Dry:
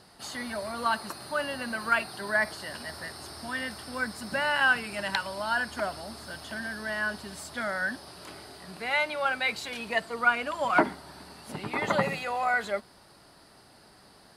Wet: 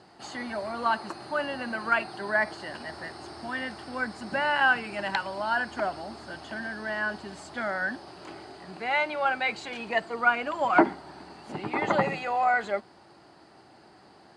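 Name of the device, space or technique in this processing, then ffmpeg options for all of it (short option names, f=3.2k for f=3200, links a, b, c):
car door speaker: -af "highpass=80,equalizer=f=340:t=q:w=4:g=8,equalizer=f=790:t=q:w=4:g=6,equalizer=f=3.7k:t=q:w=4:g=-5,equalizer=f=5.5k:t=q:w=4:g=-7,lowpass=f=7.1k:w=0.5412,lowpass=f=7.1k:w=1.3066"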